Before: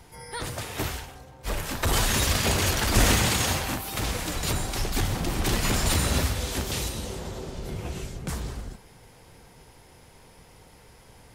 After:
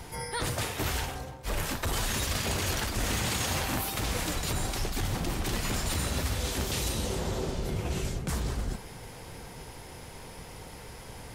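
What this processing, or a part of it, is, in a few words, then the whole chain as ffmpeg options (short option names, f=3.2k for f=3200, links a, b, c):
compression on the reversed sound: -af "areverse,acompressor=threshold=-35dB:ratio=8,areverse,volume=7.5dB"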